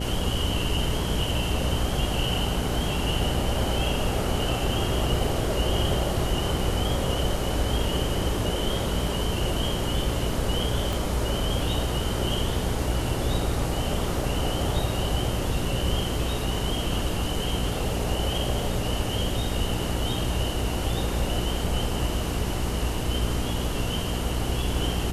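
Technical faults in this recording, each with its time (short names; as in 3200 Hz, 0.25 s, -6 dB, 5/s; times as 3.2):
hum 60 Hz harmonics 8 -30 dBFS
10.93 pop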